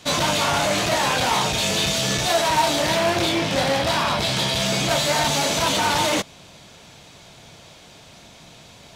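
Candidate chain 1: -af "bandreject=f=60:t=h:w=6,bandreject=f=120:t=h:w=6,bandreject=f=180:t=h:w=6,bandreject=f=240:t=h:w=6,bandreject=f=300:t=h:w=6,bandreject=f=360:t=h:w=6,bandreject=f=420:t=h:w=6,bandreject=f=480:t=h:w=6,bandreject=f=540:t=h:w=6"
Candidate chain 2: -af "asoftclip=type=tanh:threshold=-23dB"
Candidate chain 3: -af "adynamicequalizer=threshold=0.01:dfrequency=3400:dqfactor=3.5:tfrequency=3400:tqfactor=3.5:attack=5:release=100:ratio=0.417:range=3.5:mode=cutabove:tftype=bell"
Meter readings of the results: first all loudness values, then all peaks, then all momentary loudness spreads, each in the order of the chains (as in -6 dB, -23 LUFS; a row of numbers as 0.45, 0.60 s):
-20.0, -25.0, -21.0 LUFS; -8.5, -23.0, -8.5 dBFS; 2, 20, 2 LU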